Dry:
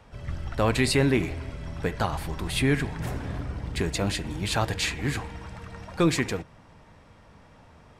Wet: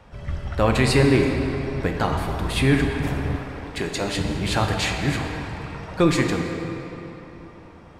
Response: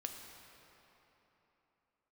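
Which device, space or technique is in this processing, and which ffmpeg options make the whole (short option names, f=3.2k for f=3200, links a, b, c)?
swimming-pool hall: -filter_complex "[1:a]atrim=start_sample=2205[a];[0:a][a]afir=irnorm=-1:irlink=0,highshelf=f=4.7k:g=-5,asettb=1/sr,asplit=3[b][c][d];[b]atrim=end=3.364[e];[c]atrim=start=3.36:end=4.17,asetpts=PTS-STARTPTS,afade=t=in:d=0.004:c=qsin,afade=t=out:st=0.806:d=0.004:c=qsin,equalizer=f=73:t=o:w=2.8:g=-12[f];[d]atrim=start=4.166[g];[e][f]acrossfade=d=0.004:c1=hsin:c2=qsin[h];[h][g]acrossfade=d=0.004:c1=qsin:c2=hsin,volume=7dB"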